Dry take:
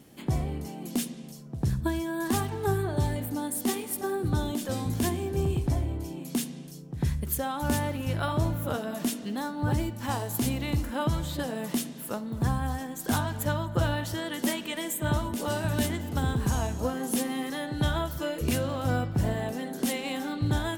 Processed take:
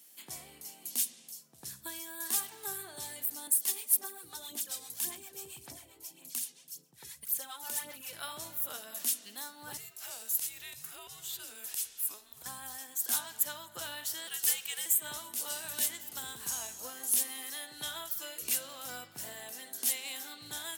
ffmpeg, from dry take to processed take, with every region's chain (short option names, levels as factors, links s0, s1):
-filter_complex "[0:a]asettb=1/sr,asplit=3[s0][s1][s2];[s0]atrim=end=3.474[s3];[s1]atrim=start=3.47:end=8.13,asetpts=PTS-STARTPTS,afade=t=in:d=0.004:c=qsin,afade=t=out:st=4.656:d=0.004:c=qsin,equalizer=f=64:w=1.2:g=-6.5,aphaser=in_gain=1:out_gain=1:delay=2.4:decay=0.52:speed=1.8:type=sinusoidal,acrossover=split=580[s4][s5];[s4]aeval=exprs='val(0)*(1-0.7/2+0.7/2*cos(2*PI*7.5*n/s))':c=same[s6];[s5]aeval=exprs='val(0)*(1-0.7/2-0.7/2*cos(2*PI*7.5*n/s))':c=same[s7];[s6][s7]amix=inputs=2:normalize=0[s8];[s2]atrim=start=8.126[s9];[s3][s8]acrossfade=d=0.004:c1=hsin:c2=qsin[s10];[s10][s9]acrossfade=d=0.004:c1=qsin:c2=hsin,asettb=1/sr,asplit=3[s11][s12][s13];[s11]atrim=end=9.774[s14];[s12]atrim=start=9.77:end=12.46,asetpts=PTS-STARTPTS,afade=t=in:d=0.004:c=qsin,afade=t=out:st=2.686:d=0.004:c=qsin,acompressor=threshold=0.0316:ratio=4:attack=3.2:release=140:knee=1:detection=peak,afreqshift=-210[s15];[s13]atrim=start=12.456[s16];[s14][s15]acrossfade=d=0.004:c1=hsin:c2=qsin[s17];[s17][s16]acrossfade=d=0.004:c1=qsin:c2=hsin,asettb=1/sr,asplit=3[s18][s19][s20];[s18]atrim=end=14.274[s21];[s19]atrim=start=14.27:end=14.86,asetpts=PTS-STARTPTS,afade=t=in:d=0.004:c=qsin,afade=t=out:st=0.586:d=0.004:c=qsin,bass=f=250:g=-14,treble=f=4000:g=2,acrusher=bits=6:mode=log:mix=0:aa=0.000001,afreqshift=-130[s22];[s20]atrim=start=14.856[s23];[s21][s22]acrossfade=d=0.004:c1=hsin:c2=qsin[s24];[s24][s23]acrossfade=d=0.004:c1=qsin:c2=hsin,aderivative,bandreject=f=50:t=h:w=6,bandreject=f=100:t=h:w=6,volume=1.58"